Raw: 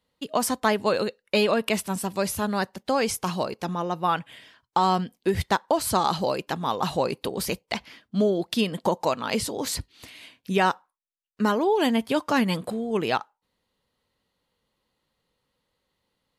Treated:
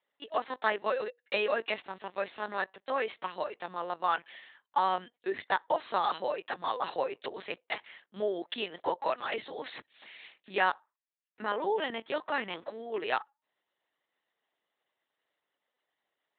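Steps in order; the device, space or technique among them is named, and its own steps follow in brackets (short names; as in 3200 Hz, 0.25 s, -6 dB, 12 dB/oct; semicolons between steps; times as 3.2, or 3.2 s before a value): talking toy (LPC vocoder at 8 kHz pitch kept; HPF 440 Hz 12 dB/oct; bell 1800 Hz +6 dB 0.37 oct); gain -5 dB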